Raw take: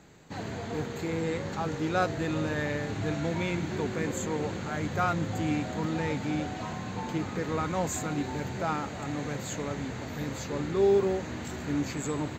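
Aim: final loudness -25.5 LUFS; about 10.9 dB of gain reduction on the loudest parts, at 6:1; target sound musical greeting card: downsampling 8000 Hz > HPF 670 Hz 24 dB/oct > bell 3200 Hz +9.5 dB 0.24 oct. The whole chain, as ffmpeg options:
-af "acompressor=threshold=-31dB:ratio=6,aresample=8000,aresample=44100,highpass=f=670:w=0.5412,highpass=f=670:w=1.3066,equalizer=f=3.2k:t=o:w=0.24:g=9.5,volume=16dB"

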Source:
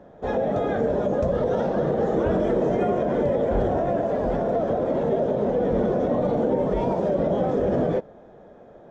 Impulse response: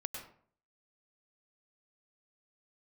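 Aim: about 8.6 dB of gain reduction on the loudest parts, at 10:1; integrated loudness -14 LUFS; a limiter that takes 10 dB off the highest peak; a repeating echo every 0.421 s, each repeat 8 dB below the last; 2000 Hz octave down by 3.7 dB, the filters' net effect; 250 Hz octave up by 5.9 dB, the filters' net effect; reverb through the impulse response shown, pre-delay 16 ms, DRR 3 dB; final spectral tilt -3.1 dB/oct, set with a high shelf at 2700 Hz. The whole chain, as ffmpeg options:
-filter_complex "[0:a]equalizer=f=250:t=o:g=7.5,equalizer=f=2k:t=o:g=-6.5,highshelf=f=2.7k:g=3.5,acompressor=threshold=-24dB:ratio=10,alimiter=level_in=2dB:limit=-24dB:level=0:latency=1,volume=-2dB,aecho=1:1:421|842|1263|1684|2105:0.398|0.159|0.0637|0.0255|0.0102,asplit=2[a][b];[1:a]atrim=start_sample=2205,adelay=16[c];[b][c]afir=irnorm=-1:irlink=0,volume=-2.5dB[d];[a][d]amix=inputs=2:normalize=0,volume=17.5dB"

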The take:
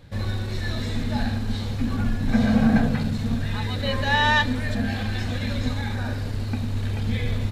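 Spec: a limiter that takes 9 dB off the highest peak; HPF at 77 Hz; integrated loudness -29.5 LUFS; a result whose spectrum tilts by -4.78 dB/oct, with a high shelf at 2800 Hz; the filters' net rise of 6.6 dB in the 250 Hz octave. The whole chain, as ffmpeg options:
-af "highpass=77,equalizer=f=250:t=o:g=7.5,highshelf=f=2.8k:g=7,volume=-6.5dB,alimiter=limit=-18.5dB:level=0:latency=1"

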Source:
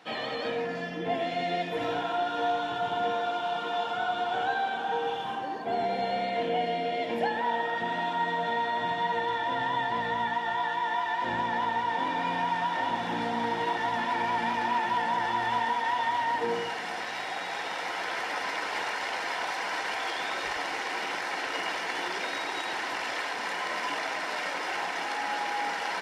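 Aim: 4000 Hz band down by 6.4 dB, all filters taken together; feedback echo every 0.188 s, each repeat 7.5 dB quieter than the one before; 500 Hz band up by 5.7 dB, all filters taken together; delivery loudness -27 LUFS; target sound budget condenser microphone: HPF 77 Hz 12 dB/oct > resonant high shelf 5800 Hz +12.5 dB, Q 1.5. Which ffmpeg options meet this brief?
-af "highpass=77,equalizer=f=500:t=o:g=7.5,equalizer=f=4k:t=o:g=-6.5,highshelf=f=5.8k:t=q:w=1.5:g=12.5,aecho=1:1:188|376|564|752|940:0.422|0.177|0.0744|0.0312|0.0131"

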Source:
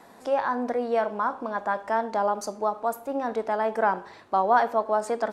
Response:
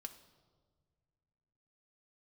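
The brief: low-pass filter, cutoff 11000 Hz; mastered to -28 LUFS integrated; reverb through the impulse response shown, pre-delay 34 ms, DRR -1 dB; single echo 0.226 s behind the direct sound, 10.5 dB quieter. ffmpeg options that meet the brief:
-filter_complex "[0:a]lowpass=11k,aecho=1:1:226:0.299,asplit=2[a][b];[1:a]atrim=start_sample=2205,adelay=34[c];[b][c]afir=irnorm=-1:irlink=0,volume=5.5dB[d];[a][d]amix=inputs=2:normalize=0,volume=-5.5dB"

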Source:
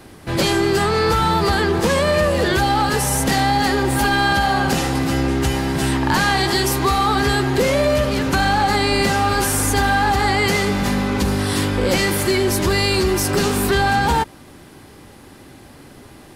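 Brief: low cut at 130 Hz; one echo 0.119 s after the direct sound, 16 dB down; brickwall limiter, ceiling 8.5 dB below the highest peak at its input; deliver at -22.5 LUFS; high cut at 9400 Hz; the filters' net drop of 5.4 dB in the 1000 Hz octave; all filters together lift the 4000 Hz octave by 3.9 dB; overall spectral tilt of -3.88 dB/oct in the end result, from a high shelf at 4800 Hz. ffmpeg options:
-af "highpass=130,lowpass=9.4k,equalizer=f=1k:t=o:g=-7.5,equalizer=f=4k:t=o:g=7,highshelf=f=4.8k:g=-4,alimiter=limit=-14dB:level=0:latency=1,aecho=1:1:119:0.158,volume=-0.5dB"

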